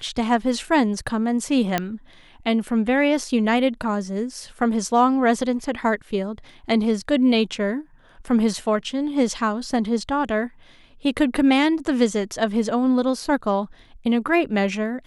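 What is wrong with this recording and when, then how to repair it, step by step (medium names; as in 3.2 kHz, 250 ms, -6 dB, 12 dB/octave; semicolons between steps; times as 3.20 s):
1.78 s: pop -7 dBFS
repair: de-click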